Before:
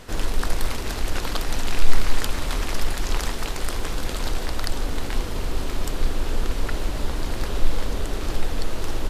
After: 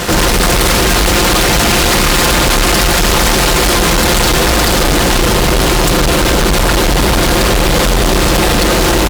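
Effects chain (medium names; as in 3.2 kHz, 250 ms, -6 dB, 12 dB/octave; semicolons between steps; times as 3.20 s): high-pass 43 Hz 24 dB/octave; comb 5.7 ms, depth 57%; fuzz box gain 40 dB, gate -48 dBFS; trim +4.5 dB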